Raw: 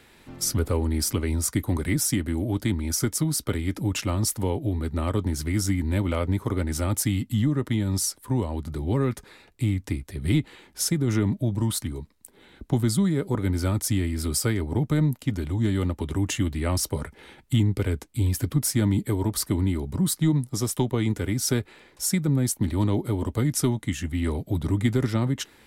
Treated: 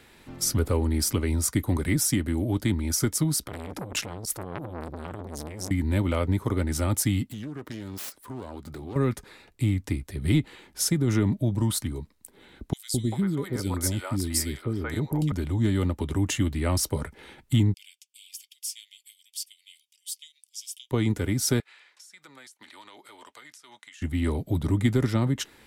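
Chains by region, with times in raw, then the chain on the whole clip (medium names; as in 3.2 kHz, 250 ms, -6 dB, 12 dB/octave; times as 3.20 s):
3.40–5.71 s: compressor with a negative ratio -27 dBFS, ratio -0.5 + transformer saturation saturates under 1.9 kHz
7.26–8.96 s: self-modulated delay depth 0.35 ms + bass shelf 160 Hz -11.5 dB + compression 3:1, threshold -35 dBFS
12.73–15.32 s: bass shelf 270 Hz -5.5 dB + three bands offset in time highs, lows, mids 210/390 ms, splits 510/2400 Hz
17.74–20.91 s: steep high-pass 2.7 kHz 48 dB/octave + treble shelf 6.7 kHz -11.5 dB + band-stop 4 kHz, Q 5.6
21.60–24.02 s: high-pass 1.4 kHz + compression 16:1, threshold -42 dBFS + distance through air 52 m
whole clip: none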